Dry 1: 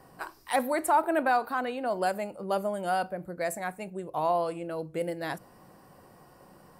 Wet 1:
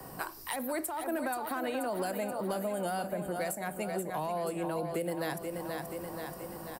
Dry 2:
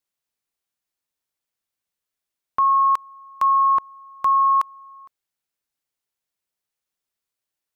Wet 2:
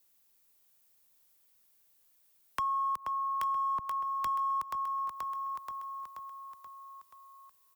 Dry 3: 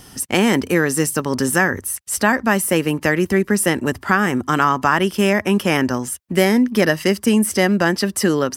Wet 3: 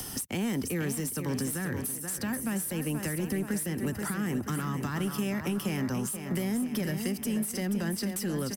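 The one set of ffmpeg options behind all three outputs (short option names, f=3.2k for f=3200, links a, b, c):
-filter_complex "[0:a]acrossover=split=90|200[a][b][c];[a]acompressor=threshold=-49dB:ratio=4[d];[b]acompressor=threshold=-27dB:ratio=4[e];[c]acompressor=threshold=-28dB:ratio=4[f];[d][e][f]amix=inputs=3:normalize=0,asplit=2[g][h];[h]volume=24dB,asoftclip=hard,volume=-24dB,volume=-5dB[i];[g][i]amix=inputs=2:normalize=0,aecho=1:1:480|960|1440|1920|2400|2880:0.335|0.181|0.0977|0.0527|0.0285|0.0154,acrossover=split=360|1600[j][k][l];[k]alimiter=level_in=1dB:limit=-24dB:level=0:latency=1,volume=-1dB[m];[l]aemphasis=mode=production:type=75fm[n];[j][m][n]amix=inputs=3:normalize=0,asoftclip=type=tanh:threshold=-10dB,acompressor=threshold=-38dB:ratio=2.5,highshelf=f=3.3k:g=-9,volume=4.5dB"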